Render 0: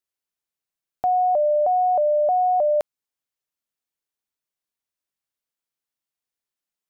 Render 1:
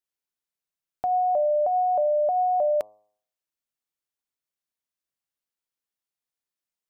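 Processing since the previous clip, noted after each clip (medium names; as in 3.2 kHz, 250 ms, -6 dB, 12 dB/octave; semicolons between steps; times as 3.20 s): de-hum 105.3 Hz, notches 11; trim -3 dB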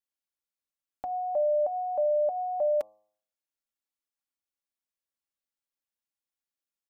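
comb 3.6 ms, depth 60%; trim -6 dB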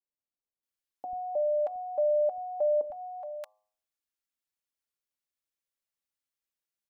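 three bands offset in time mids, lows, highs 90/630 ms, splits 210/830 Hz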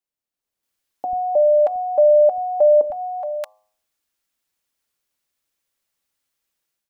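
level rider gain up to 9 dB; trim +4 dB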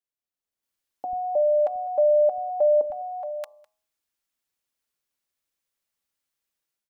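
delay 204 ms -22.5 dB; trim -6 dB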